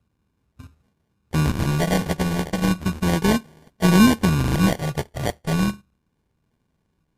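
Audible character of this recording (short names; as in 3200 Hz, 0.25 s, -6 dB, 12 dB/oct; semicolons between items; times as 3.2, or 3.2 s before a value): a buzz of ramps at a fixed pitch in blocks of 32 samples; phasing stages 6, 0.34 Hz, lowest notch 290–1500 Hz; aliases and images of a low sample rate 1300 Hz, jitter 0%; MP3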